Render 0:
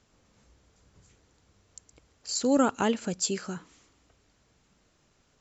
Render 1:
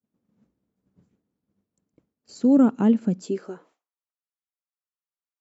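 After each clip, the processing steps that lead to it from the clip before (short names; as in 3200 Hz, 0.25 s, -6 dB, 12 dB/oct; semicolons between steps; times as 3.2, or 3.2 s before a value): high-pass sweep 210 Hz -> 1200 Hz, 3.16–4.03; tilt -4 dB/oct; expander -46 dBFS; gain -5 dB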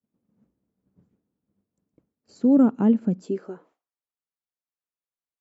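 high shelf 2200 Hz -10.5 dB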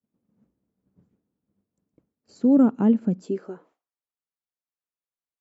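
nothing audible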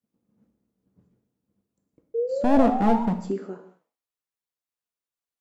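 one-sided fold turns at -19 dBFS; painted sound rise, 2.14–3.03, 450–960 Hz -28 dBFS; non-linear reverb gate 0.25 s falling, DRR 5 dB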